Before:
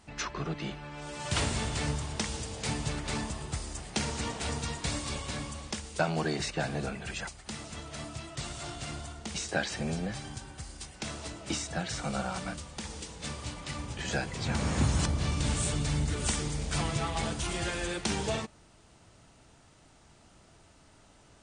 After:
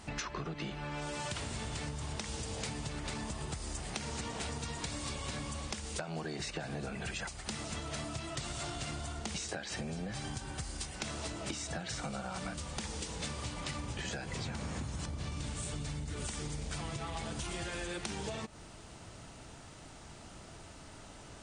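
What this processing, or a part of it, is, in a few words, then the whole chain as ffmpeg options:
serial compression, leveller first: -af "acompressor=threshold=-34dB:ratio=6,acompressor=threshold=-44dB:ratio=6,volume=7.5dB"

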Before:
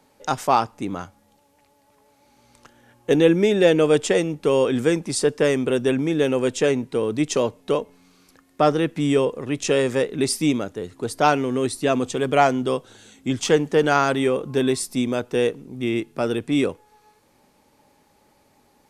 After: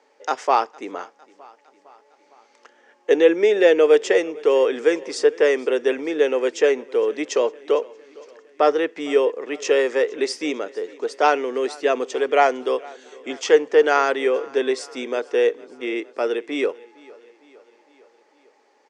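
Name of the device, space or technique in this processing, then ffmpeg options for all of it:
phone speaker on a table: -af "highpass=frequency=350:width=0.5412,highpass=frequency=350:width=1.3066,equalizer=frequency=450:width_type=q:width=4:gain=5,equalizer=frequency=1900:width_type=q:width=4:gain=5,equalizer=frequency=3900:width_type=q:width=4:gain=-5,lowpass=frequency=6400:width=0.5412,lowpass=frequency=6400:width=1.3066,aecho=1:1:457|914|1371|1828:0.0708|0.0418|0.0246|0.0145"

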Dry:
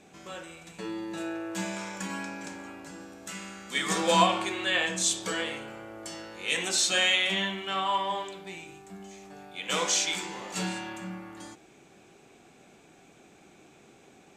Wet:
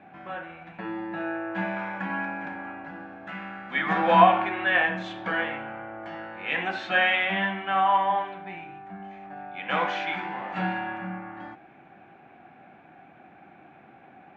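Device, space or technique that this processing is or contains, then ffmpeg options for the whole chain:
bass cabinet: -af "highpass=81,equalizer=frequency=430:width_type=q:width=4:gain=-10,equalizer=frequency=760:width_type=q:width=4:gain=9,equalizer=frequency=1600:width_type=q:width=4:gain=6,lowpass=frequency=2400:width=0.5412,lowpass=frequency=2400:width=1.3066,volume=3.5dB"

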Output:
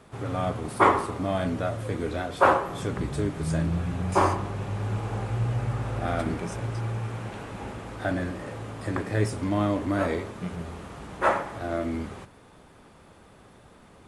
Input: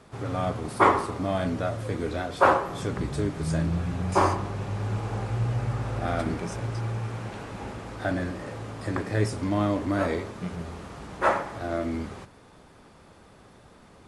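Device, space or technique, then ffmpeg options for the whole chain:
exciter from parts: -filter_complex "[0:a]asplit=2[link_01][link_02];[link_02]highpass=frequency=3200:width=0.5412,highpass=frequency=3200:width=1.3066,asoftclip=type=tanh:threshold=-34dB,highpass=3900,volume=-9dB[link_03];[link_01][link_03]amix=inputs=2:normalize=0"

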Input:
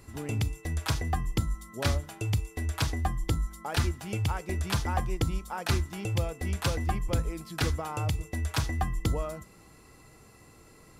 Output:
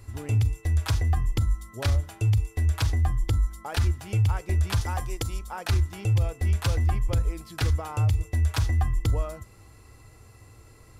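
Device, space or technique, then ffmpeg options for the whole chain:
car stereo with a boomy subwoofer: -filter_complex "[0:a]lowshelf=frequency=130:width_type=q:width=3:gain=6,alimiter=limit=-16dB:level=0:latency=1:release=17,asettb=1/sr,asplit=3[link_01][link_02][link_03];[link_01]atrim=end=4.814[link_04];[link_02]atrim=start=4.81:end=5.39,asetpts=PTS-STARTPTS,afade=type=in:duration=0.004:curve=qsin,afade=type=out:start_time=0.576:duration=0.004:curve=qsin,bass=frequency=250:gain=-7,treble=frequency=4000:gain=7[link_05];[link_03]atrim=start=5.386[link_06];[link_04][link_05]acrossfade=duration=0.004:curve1=hsin:curve2=qsin[link_07];[link_07][link_06]acrossfade=duration=0.004:curve1=qsin:curve2=hsin"

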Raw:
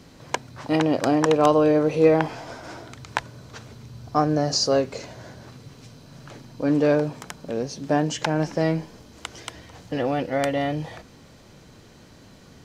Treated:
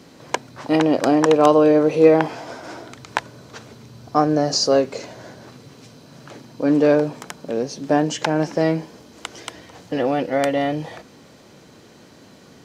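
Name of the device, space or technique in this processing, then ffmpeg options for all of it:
filter by subtraction: -filter_complex "[0:a]asplit=2[link_01][link_02];[link_02]lowpass=310,volume=-1[link_03];[link_01][link_03]amix=inputs=2:normalize=0,volume=2.5dB"

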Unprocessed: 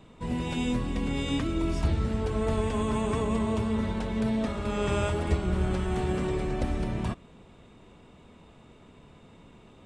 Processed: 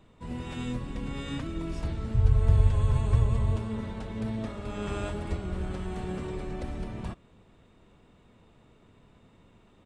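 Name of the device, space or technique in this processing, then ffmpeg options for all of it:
octave pedal: -filter_complex "[0:a]asplit=3[link_01][link_02][link_03];[link_01]afade=type=out:start_time=2.14:duration=0.02[link_04];[link_02]lowshelf=frequency=160:width_type=q:width=3:gain=12,afade=type=in:start_time=2.14:duration=0.02,afade=type=out:start_time=3.55:duration=0.02[link_05];[link_03]afade=type=in:start_time=3.55:duration=0.02[link_06];[link_04][link_05][link_06]amix=inputs=3:normalize=0,asplit=2[link_07][link_08];[link_08]asetrate=22050,aresample=44100,atempo=2,volume=-4dB[link_09];[link_07][link_09]amix=inputs=2:normalize=0,volume=-7dB"

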